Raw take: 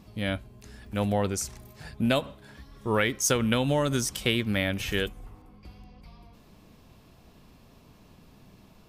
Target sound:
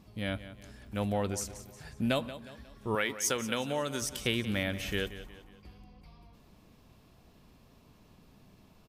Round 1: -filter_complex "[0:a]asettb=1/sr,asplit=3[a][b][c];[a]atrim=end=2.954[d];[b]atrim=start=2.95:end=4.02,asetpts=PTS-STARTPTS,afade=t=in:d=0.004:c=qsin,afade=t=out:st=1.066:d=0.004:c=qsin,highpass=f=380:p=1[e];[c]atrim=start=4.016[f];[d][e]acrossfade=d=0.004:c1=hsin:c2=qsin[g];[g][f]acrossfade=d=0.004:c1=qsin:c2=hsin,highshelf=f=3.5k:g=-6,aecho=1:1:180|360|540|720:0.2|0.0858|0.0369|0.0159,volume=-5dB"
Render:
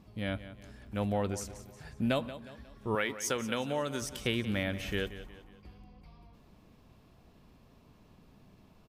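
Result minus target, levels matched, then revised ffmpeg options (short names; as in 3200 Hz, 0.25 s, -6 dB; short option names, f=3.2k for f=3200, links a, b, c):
8000 Hz band -3.5 dB
-filter_complex "[0:a]asettb=1/sr,asplit=3[a][b][c];[a]atrim=end=2.954[d];[b]atrim=start=2.95:end=4.02,asetpts=PTS-STARTPTS,afade=t=in:d=0.004:c=qsin,afade=t=out:st=1.066:d=0.004:c=qsin,highpass=f=380:p=1[e];[c]atrim=start=4.016[f];[d][e]acrossfade=d=0.004:c1=hsin:c2=qsin[g];[g][f]acrossfade=d=0.004:c1=qsin:c2=hsin,aecho=1:1:180|360|540|720:0.2|0.0858|0.0369|0.0159,volume=-5dB"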